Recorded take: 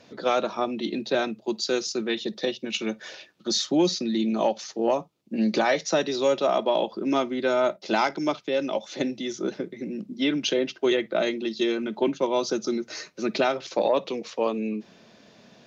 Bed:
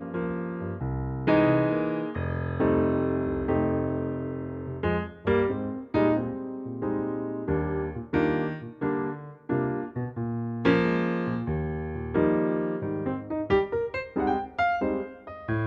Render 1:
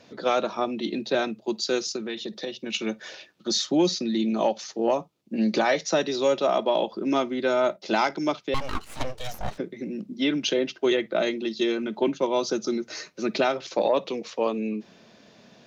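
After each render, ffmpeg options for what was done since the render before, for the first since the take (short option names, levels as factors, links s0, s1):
-filter_complex "[0:a]asettb=1/sr,asplit=3[s0][s1][s2];[s0]atrim=end=1.964[s3];[s1]atrim=start=1.96:end=2.66,asetpts=PTS-STARTPTS,afade=t=in:d=0.004:c=qsin,afade=t=out:st=0.696:d=0.004:c=qsin,acompressor=threshold=0.0316:ratio=2.5:attack=3.2:release=140:knee=1:detection=peak[s4];[s2]atrim=start=2.656[s5];[s3][s4]acrossfade=d=0.004:c1=hsin:c2=qsin[s6];[s6][s5]acrossfade=d=0.004:c1=qsin:c2=hsin,asettb=1/sr,asplit=3[s7][s8][s9];[s7]atrim=end=8.544[s10];[s8]atrim=start=8.54:end=9.58,asetpts=PTS-STARTPTS,afade=t=in:d=0.004:c=qsin,afade=t=out:st=1.036:d=0.004:c=qsin,aeval=exprs='abs(val(0))':c=same[s11];[s9]atrim=start=9.576[s12];[s10][s11]acrossfade=d=0.004:c1=hsin:c2=qsin[s13];[s13][s12]acrossfade=d=0.004:c1=qsin:c2=hsin"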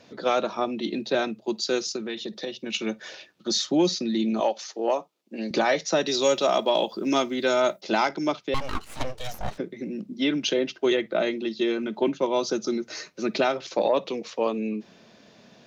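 -filter_complex "[0:a]asettb=1/sr,asplit=3[s0][s1][s2];[s0]atrim=end=4.404[s3];[s1]atrim=start=4.4:end=5.51,asetpts=PTS-STARTPTS,afade=t=in:d=0.004:c=qsin,afade=t=out:st=1.106:d=0.004:c=qsin,highpass=370[s4];[s2]atrim=start=5.506[s5];[s3][s4]acrossfade=d=0.004:c1=hsin:c2=qsin[s6];[s6][s5]acrossfade=d=0.004:c1=qsin:c2=hsin,asettb=1/sr,asplit=3[s7][s8][s9];[s7]atrim=end=6.064[s10];[s8]atrim=start=6.06:end=7.81,asetpts=PTS-STARTPTS,afade=t=in:d=0.004:c=qsin,afade=t=out:st=1.746:d=0.004:c=qsin,aemphasis=mode=production:type=75kf[s11];[s9]atrim=start=7.806[s12];[s10][s11]acrossfade=d=0.004:c1=hsin:c2=qsin[s13];[s13][s12]acrossfade=d=0.004:c1=qsin:c2=hsin,asettb=1/sr,asplit=3[s14][s15][s16];[s14]atrim=end=11.024[s17];[s15]atrim=start=11.02:end=12.26,asetpts=PTS-STARTPTS,afade=t=in:d=0.004:c=qsin,afade=t=out:st=1.236:d=0.004:c=qsin,acrossover=split=3900[s18][s19];[s19]acompressor=threshold=0.00398:ratio=4:attack=1:release=60[s20];[s18][s20]amix=inputs=2:normalize=0[s21];[s16]atrim=start=12.256[s22];[s17][s21]acrossfade=d=0.004:c1=hsin:c2=qsin[s23];[s23][s22]acrossfade=d=0.004:c1=qsin:c2=hsin"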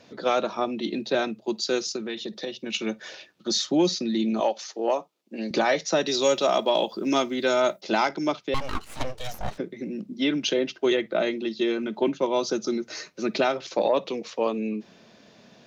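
-af anull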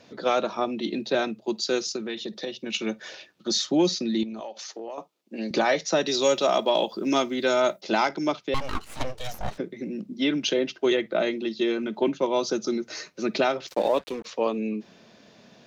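-filter_complex "[0:a]asettb=1/sr,asplit=3[s0][s1][s2];[s0]atrim=end=4.234[s3];[s1]atrim=start=4.23:end=4.98,asetpts=PTS-STARTPTS,afade=t=in:d=0.004:c=qsin,afade=t=out:st=0.746:d=0.004:c=qsin,acompressor=threshold=0.0224:ratio=6:attack=3.2:release=140:knee=1:detection=peak[s4];[s2]atrim=start=4.976[s5];[s3][s4]acrossfade=d=0.004:c1=hsin:c2=qsin[s6];[s6][s5]acrossfade=d=0.004:c1=qsin:c2=hsin,asplit=3[s7][s8][s9];[s7]afade=t=out:st=13.67:d=0.02[s10];[s8]aeval=exprs='sgn(val(0))*max(abs(val(0))-0.01,0)':c=same,afade=t=in:st=13.67:d=0.02,afade=t=out:st=14.24:d=0.02[s11];[s9]afade=t=in:st=14.24:d=0.02[s12];[s10][s11][s12]amix=inputs=3:normalize=0"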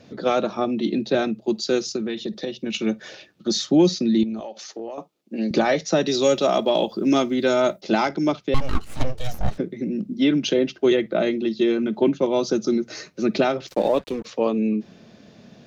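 -af "lowshelf=f=320:g=11.5,bandreject=f=970:w=15"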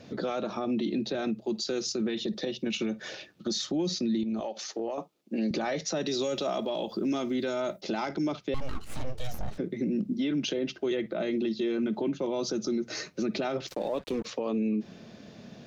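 -af "acompressor=threshold=0.0501:ratio=1.5,alimiter=limit=0.0794:level=0:latency=1:release=51"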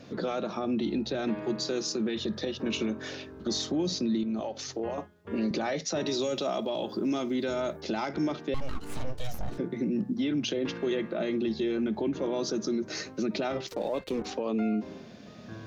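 -filter_complex "[1:a]volume=0.133[s0];[0:a][s0]amix=inputs=2:normalize=0"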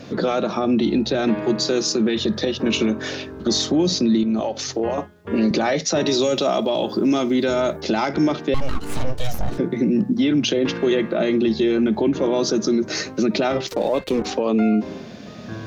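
-af "volume=3.35"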